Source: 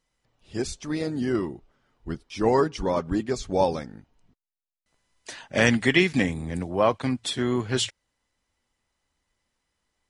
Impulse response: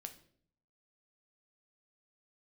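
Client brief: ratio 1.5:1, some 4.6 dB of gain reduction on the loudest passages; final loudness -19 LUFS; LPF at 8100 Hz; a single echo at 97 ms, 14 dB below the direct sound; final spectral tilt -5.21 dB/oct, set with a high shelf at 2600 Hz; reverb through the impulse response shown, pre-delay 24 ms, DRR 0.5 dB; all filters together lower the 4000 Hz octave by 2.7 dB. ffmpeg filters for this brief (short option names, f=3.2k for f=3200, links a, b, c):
-filter_complex "[0:a]lowpass=8.1k,highshelf=f=2.6k:g=5,equalizer=f=4k:t=o:g=-8,acompressor=threshold=-28dB:ratio=1.5,aecho=1:1:97:0.2,asplit=2[a][b];[1:a]atrim=start_sample=2205,adelay=24[c];[b][c]afir=irnorm=-1:irlink=0,volume=4dB[d];[a][d]amix=inputs=2:normalize=0,volume=7dB"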